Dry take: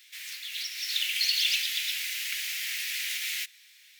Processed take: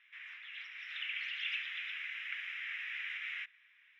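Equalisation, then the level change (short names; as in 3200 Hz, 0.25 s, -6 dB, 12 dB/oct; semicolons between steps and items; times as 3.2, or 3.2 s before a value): running mean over 10 samples; air absorption 440 m; +4.5 dB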